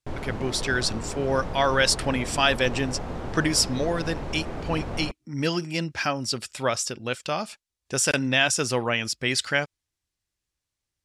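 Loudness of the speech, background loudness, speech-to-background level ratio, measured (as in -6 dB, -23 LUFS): -25.5 LUFS, -34.5 LUFS, 9.0 dB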